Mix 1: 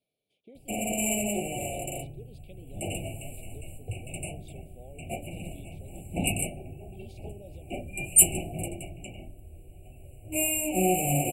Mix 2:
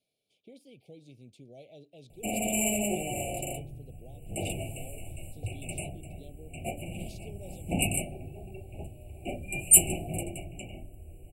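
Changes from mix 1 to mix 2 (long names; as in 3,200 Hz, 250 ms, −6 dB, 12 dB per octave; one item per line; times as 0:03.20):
speech: add parametric band 6,100 Hz +11 dB 1.3 octaves
background: entry +1.55 s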